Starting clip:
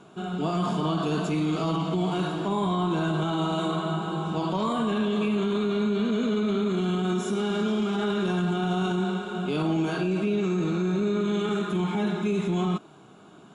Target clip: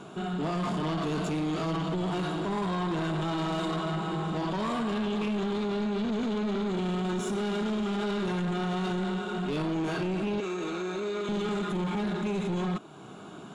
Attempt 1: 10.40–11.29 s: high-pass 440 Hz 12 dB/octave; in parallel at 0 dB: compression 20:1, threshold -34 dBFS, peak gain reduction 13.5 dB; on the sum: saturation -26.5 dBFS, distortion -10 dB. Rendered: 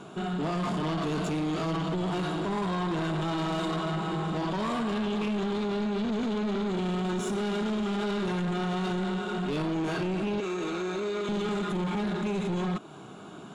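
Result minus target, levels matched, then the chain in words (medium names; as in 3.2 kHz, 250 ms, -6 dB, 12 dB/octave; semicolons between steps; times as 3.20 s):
compression: peak gain reduction -7 dB
10.40–11.29 s: high-pass 440 Hz 12 dB/octave; in parallel at 0 dB: compression 20:1, threshold -41.5 dBFS, peak gain reduction 20.5 dB; on the sum: saturation -26.5 dBFS, distortion -11 dB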